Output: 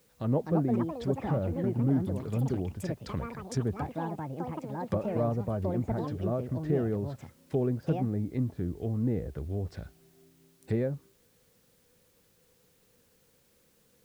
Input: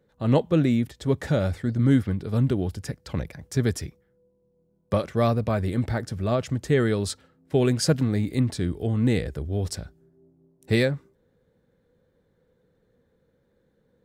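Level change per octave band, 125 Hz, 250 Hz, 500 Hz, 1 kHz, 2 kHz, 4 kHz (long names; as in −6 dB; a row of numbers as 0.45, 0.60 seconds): −6.5 dB, −6.0 dB, −6.0 dB, −4.0 dB, −14.5 dB, below −15 dB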